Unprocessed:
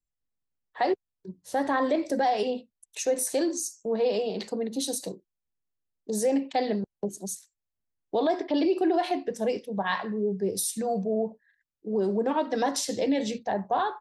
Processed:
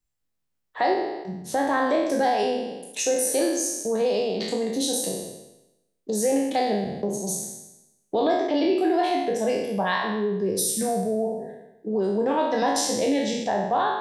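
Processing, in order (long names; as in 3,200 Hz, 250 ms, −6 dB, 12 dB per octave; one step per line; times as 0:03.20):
peak hold with a decay on every bin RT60 0.91 s
in parallel at +2.5 dB: downward compressor, threshold −31 dBFS, peak gain reduction 12.5 dB
on the sum: level −2.5 dB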